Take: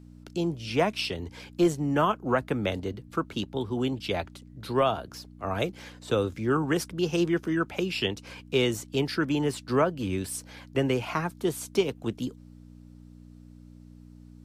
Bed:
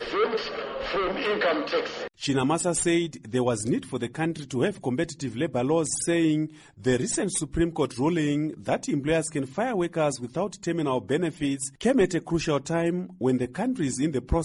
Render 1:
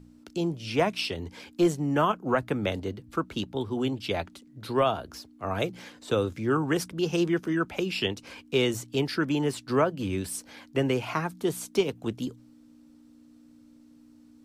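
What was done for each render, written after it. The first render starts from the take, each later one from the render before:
hum removal 60 Hz, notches 3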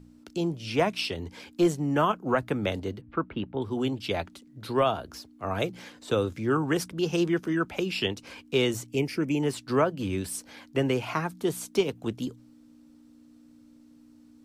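0:03.01–0:03.62: low-pass filter 2,600 Hz 24 dB per octave
0:08.87–0:09.43: drawn EQ curve 490 Hz 0 dB, 1,600 Hz −12 dB, 2,300 Hz +5 dB, 3,800 Hz −13 dB, 5,700 Hz +1 dB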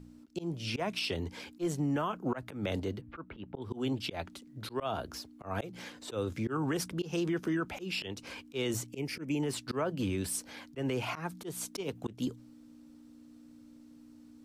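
volume swells 197 ms
brickwall limiter −24 dBFS, peak gain reduction 10.5 dB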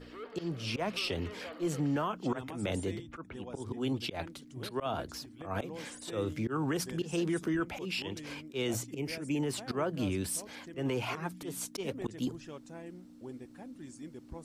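mix in bed −21.5 dB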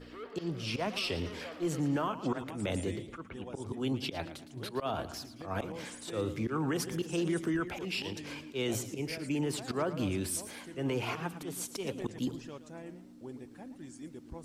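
feedback echo with a swinging delay time 113 ms, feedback 40%, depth 149 cents, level −13 dB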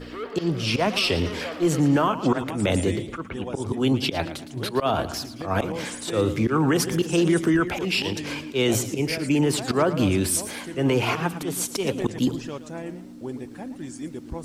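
level +11.5 dB

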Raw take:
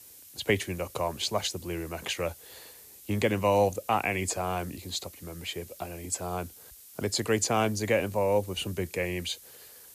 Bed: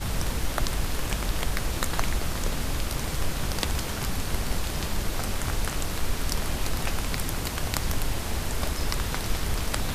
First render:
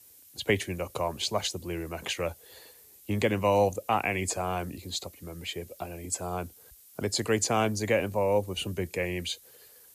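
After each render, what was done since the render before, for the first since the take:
broadband denoise 6 dB, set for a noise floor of −51 dBFS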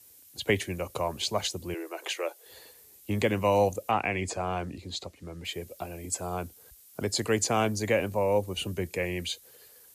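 0:01.74–0:02.46: elliptic high-pass filter 330 Hz
0:03.91–0:05.45: high-frequency loss of the air 67 metres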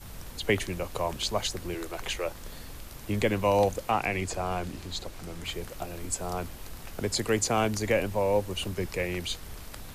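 mix in bed −15 dB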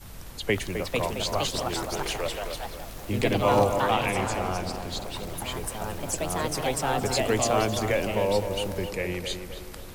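on a send: tape delay 262 ms, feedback 55%, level −6 dB, low-pass 1,800 Hz
on the sum: delay with pitch and tempo change per echo 526 ms, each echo +3 semitones, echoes 2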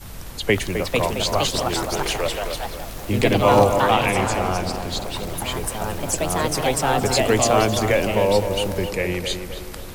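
level +6.5 dB

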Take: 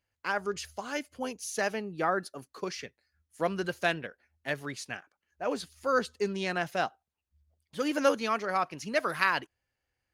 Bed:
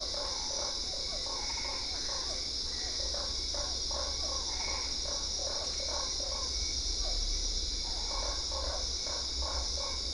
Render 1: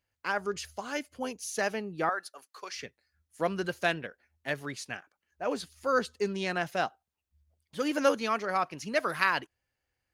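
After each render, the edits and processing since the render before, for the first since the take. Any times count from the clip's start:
0:02.09–0:02.73: high-pass filter 810 Hz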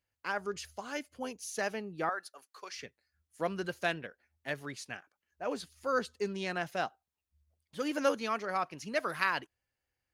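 level −4 dB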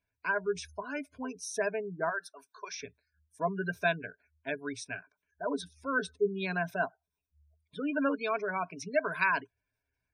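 gate on every frequency bin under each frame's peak −20 dB strong
EQ curve with evenly spaced ripples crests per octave 1.6, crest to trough 15 dB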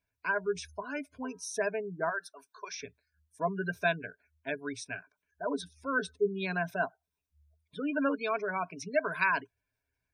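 0:01.16–0:01.60: hum removal 320.6 Hz, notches 7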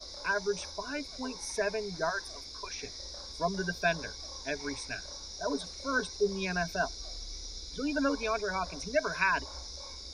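mix in bed −9 dB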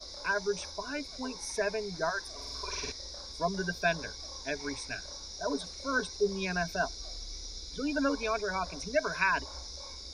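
0:02.34–0:02.92: flutter between parallel walls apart 8.2 metres, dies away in 1.3 s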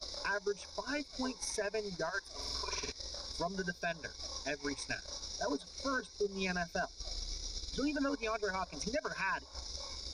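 transient designer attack +9 dB, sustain −11 dB
brickwall limiter −26.5 dBFS, peak gain reduction 19 dB

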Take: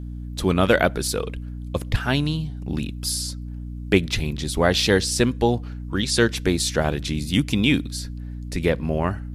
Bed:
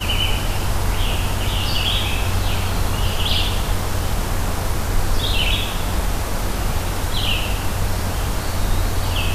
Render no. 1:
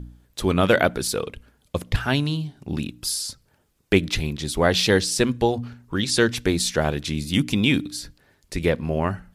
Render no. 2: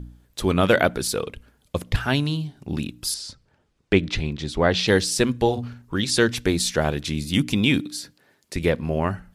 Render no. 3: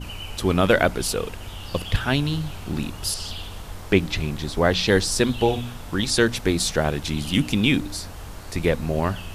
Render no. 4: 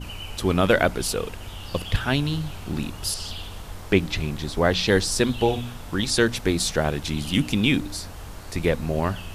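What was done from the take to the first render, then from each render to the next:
hum removal 60 Hz, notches 5
0:03.14–0:04.88: high-frequency loss of the air 92 metres; 0:05.41–0:05.82: double-tracking delay 49 ms −11 dB; 0:07.81–0:08.56: high-pass filter 170 Hz
mix in bed −15.5 dB
level −1 dB

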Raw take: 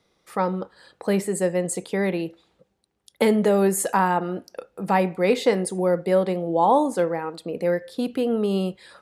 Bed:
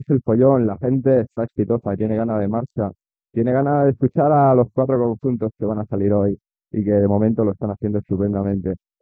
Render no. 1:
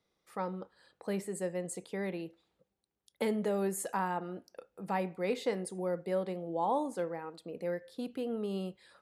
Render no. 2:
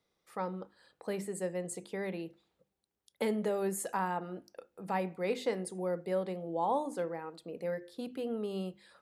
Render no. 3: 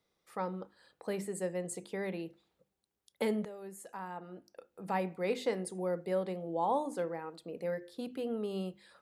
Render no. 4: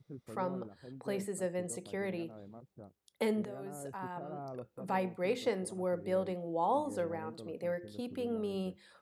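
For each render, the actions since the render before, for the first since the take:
level −13 dB
mains-hum notches 50/100/150/200/250/300/350 Hz
0:03.45–0:04.87: fade in quadratic, from −14 dB
mix in bed −30.5 dB

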